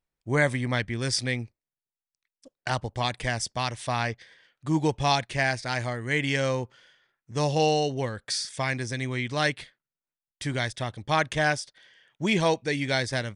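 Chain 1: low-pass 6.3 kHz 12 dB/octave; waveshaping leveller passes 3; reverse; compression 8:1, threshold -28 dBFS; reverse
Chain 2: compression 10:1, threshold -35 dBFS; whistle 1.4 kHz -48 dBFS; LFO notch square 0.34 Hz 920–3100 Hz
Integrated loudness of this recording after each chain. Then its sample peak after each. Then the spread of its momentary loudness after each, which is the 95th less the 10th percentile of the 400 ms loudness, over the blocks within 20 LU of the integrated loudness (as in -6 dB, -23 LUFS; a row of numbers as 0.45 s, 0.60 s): -31.0 LUFS, -40.5 LUFS; -18.5 dBFS, -20.5 dBFS; 6 LU, 12 LU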